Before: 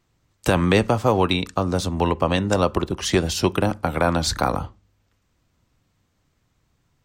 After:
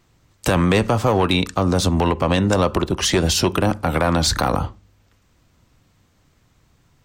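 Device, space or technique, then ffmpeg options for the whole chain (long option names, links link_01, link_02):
soft clipper into limiter: -af "asoftclip=type=tanh:threshold=-11.5dB,alimiter=limit=-18dB:level=0:latency=1:release=117,volume=8.5dB"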